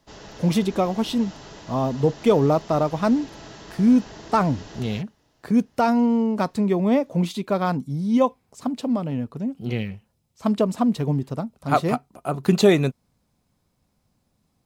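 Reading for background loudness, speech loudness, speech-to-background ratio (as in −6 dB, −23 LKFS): −42.0 LKFS, −22.5 LKFS, 19.5 dB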